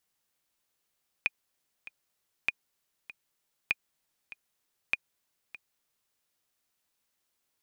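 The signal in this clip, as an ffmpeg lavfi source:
-f lavfi -i "aevalsrc='pow(10,(-12.5-17.5*gte(mod(t,2*60/98),60/98))/20)*sin(2*PI*2450*mod(t,60/98))*exp(-6.91*mod(t,60/98)/0.03)':d=4.89:s=44100"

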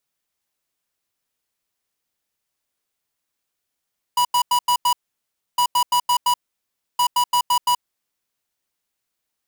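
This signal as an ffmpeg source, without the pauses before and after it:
-f lavfi -i "aevalsrc='0.141*(2*lt(mod(977*t,1),0.5)-1)*clip(min(mod(mod(t,1.41),0.17),0.08-mod(mod(t,1.41),0.17))/0.005,0,1)*lt(mod(t,1.41),0.85)':d=4.23:s=44100"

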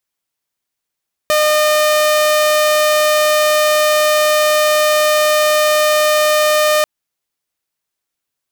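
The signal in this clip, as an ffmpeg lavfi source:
-f lavfi -i "aevalsrc='0.398*(2*mod(608*t,1)-1)':d=5.54:s=44100"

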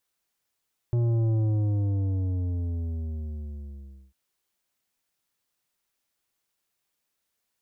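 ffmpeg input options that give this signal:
-f lavfi -i "aevalsrc='0.0794*clip((3.2-t)/2.82,0,1)*tanh(2.99*sin(2*PI*120*3.2/log(65/120)*(exp(log(65/120)*t/3.2)-1)))/tanh(2.99)':d=3.2:s=44100"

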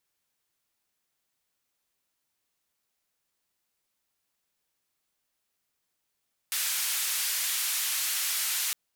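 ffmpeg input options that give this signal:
-f lavfi -i "anoisesrc=c=white:d=2.21:r=44100:seed=1,highpass=f=1600,lowpass=f=15000,volume=-22.4dB"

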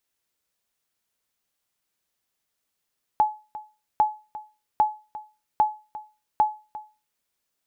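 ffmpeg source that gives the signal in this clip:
-f lavfi -i "aevalsrc='0.266*(sin(2*PI*853*mod(t,0.8))*exp(-6.91*mod(t,0.8)/0.31)+0.141*sin(2*PI*853*max(mod(t,0.8)-0.35,0))*exp(-6.91*max(mod(t,0.8)-0.35,0)/0.31))':d=4:s=44100"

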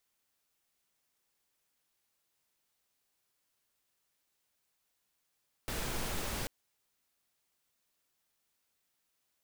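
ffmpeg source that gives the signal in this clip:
-f lavfi -i "anoisesrc=c=pink:a=0.0767:d=0.79:r=44100:seed=1"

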